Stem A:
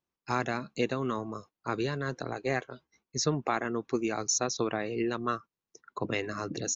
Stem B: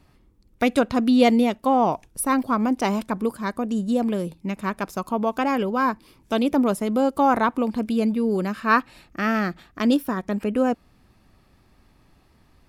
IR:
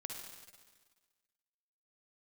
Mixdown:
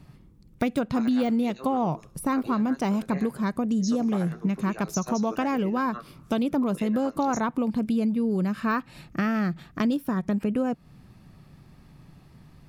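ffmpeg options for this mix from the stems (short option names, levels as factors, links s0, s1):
-filter_complex "[0:a]highpass=250,acrossover=split=2500[s0][s1];[s0]aeval=exprs='val(0)*(1-1/2+1/2*cos(2*PI*9.2*n/s))':c=same[s2];[s1]aeval=exprs='val(0)*(1-1/2-1/2*cos(2*PI*9.2*n/s))':c=same[s3];[s2][s3]amix=inputs=2:normalize=0,flanger=delay=15.5:depth=5.7:speed=0.2,adelay=650,volume=0.75,asplit=2[s4][s5];[s5]volume=0.316[s6];[1:a]deesser=0.65,equalizer=f=150:t=o:w=0.81:g=14.5,acompressor=threshold=0.0562:ratio=4,volume=1.19[s7];[2:a]atrim=start_sample=2205[s8];[s6][s8]afir=irnorm=-1:irlink=0[s9];[s4][s7][s9]amix=inputs=3:normalize=0"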